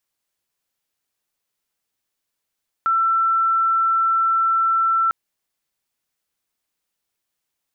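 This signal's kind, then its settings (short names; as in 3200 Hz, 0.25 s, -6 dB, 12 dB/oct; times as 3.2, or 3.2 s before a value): tone sine 1340 Hz -15 dBFS 2.25 s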